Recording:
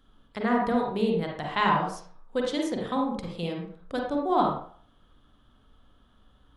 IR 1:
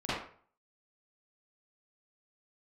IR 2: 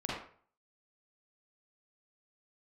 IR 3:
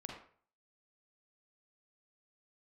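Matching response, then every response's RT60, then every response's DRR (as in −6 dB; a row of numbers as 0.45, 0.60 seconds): 3; 0.50, 0.50, 0.50 seconds; −13.5, −6.5, −0.5 decibels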